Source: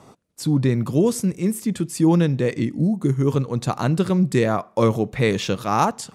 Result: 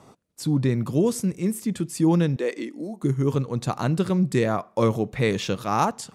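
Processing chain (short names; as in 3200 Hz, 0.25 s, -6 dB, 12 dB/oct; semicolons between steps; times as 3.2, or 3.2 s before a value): 2.36–3.03 HPF 300 Hz 24 dB/oct; gain -3 dB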